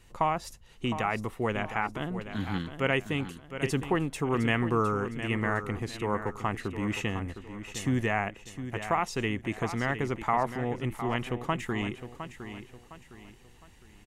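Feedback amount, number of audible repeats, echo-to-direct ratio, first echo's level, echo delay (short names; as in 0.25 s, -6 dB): 36%, 3, -10.0 dB, -10.5 dB, 0.71 s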